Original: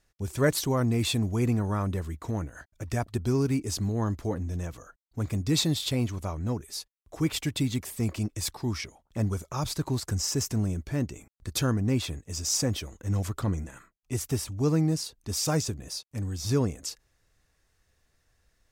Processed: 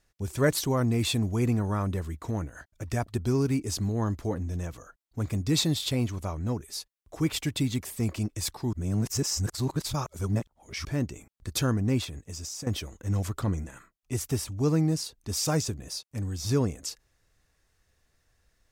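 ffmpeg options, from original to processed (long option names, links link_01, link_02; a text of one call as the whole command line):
ffmpeg -i in.wav -filter_complex "[0:a]asettb=1/sr,asplit=3[link_01][link_02][link_03];[link_01]atrim=end=12.044[link_04];[link_02]atrim=start=12.04:end=12.67,asetpts=PTS-STARTPTS,afade=type=in:duration=0.004:curve=qsin,afade=type=out:start_time=0.626:duration=0.004:curve=qsin,acompressor=threshold=-34dB:ratio=12:attack=3.2:release=140:knee=1:detection=peak[link_05];[link_03]atrim=start=12.666[link_06];[link_04][link_05]acrossfade=duration=0.004:curve1=hsin:curve2=qsin[link_07];[link_07][link_06]acrossfade=duration=0.004:curve1=qsin:curve2=hsin,asplit=3[link_08][link_09][link_10];[link_08]atrim=end=8.732[link_11];[link_09]atrim=start=8.728:end=10.852,asetpts=PTS-STARTPTS,areverse[link_12];[link_10]atrim=start=10.848[link_13];[link_11][link_12]acrossfade=duration=0.004:curve1=hsin:curve2=hsin[link_14];[link_14][link_13]acrossfade=duration=0.004:curve1=hsin:curve2=hsin" out.wav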